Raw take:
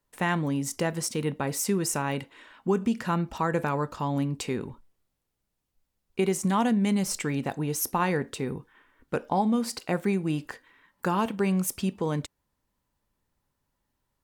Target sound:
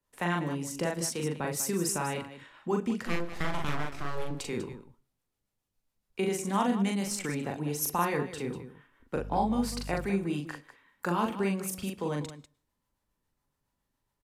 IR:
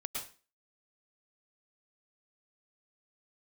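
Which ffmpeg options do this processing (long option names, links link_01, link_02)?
-filter_complex "[0:a]acrossover=split=200|4600[link_01][link_02][link_03];[link_01]alimiter=level_in=9dB:limit=-24dB:level=0:latency=1,volume=-9dB[link_04];[link_04][link_02][link_03]amix=inputs=3:normalize=0,acrossover=split=510[link_05][link_06];[link_05]aeval=exprs='val(0)*(1-0.5/2+0.5/2*cos(2*PI*7.2*n/s))':channel_layout=same[link_07];[link_06]aeval=exprs='val(0)*(1-0.5/2-0.5/2*cos(2*PI*7.2*n/s))':channel_layout=same[link_08];[link_07][link_08]amix=inputs=2:normalize=0,asettb=1/sr,asplit=3[link_09][link_10][link_11];[link_09]atrim=end=3.064[link_12];[link_10]atrim=start=3.06:end=4.31,asetpts=PTS-STARTPTS,afade=type=in:duration=0.004:curve=qsin,afade=type=out:start_time=1.246:duration=0.004:curve=qsin,aeval=exprs='abs(val(0))':channel_layout=same[link_13];[link_11]atrim=start=4.306[link_14];[link_12][link_13]acrossfade=duration=0.004:curve1=hsin:curve2=qsin[link_15];[link_15][link_14]acrossfade=duration=0.004:curve1=qsin:curve2=hsin,asettb=1/sr,asplit=3[link_16][link_17][link_18];[link_16]atrim=end=9.154[link_19];[link_17]atrim=start=9.15:end=10.06,asetpts=PTS-STARTPTS,afade=type=in:duration=0.004:curve=qsin,afade=type=out:start_time=0.906:duration=0.004:curve=qsin,aeval=exprs='val(0)+0.00891*(sin(2*PI*50*n/s)+sin(2*PI*2*50*n/s)/2+sin(2*PI*3*50*n/s)/3+sin(2*PI*4*50*n/s)/4+sin(2*PI*5*50*n/s)/5)':channel_layout=same[link_20];[link_18]atrim=start=10.056[link_21];[link_19][link_20]acrossfade=duration=0.004:curve1=hsin:curve2=qsin[link_22];[link_22][link_21]acrossfade=duration=0.004:curve1=qsin:curve2=hsin,aecho=1:1:40.82|195.3:0.708|0.251,asplit=2[link_23][link_24];[1:a]atrim=start_sample=2205[link_25];[link_24][link_25]afir=irnorm=-1:irlink=0,volume=-23dB[link_26];[link_23][link_26]amix=inputs=2:normalize=0,aresample=32000,aresample=44100,volume=-2.5dB"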